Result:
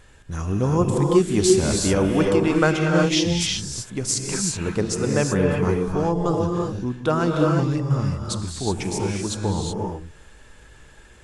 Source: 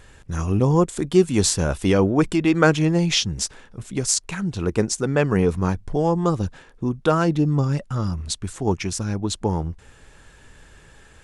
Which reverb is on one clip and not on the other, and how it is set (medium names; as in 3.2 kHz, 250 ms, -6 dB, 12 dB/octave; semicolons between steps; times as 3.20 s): gated-style reverb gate 400 ms rising, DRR 0 dB; trim -3 dB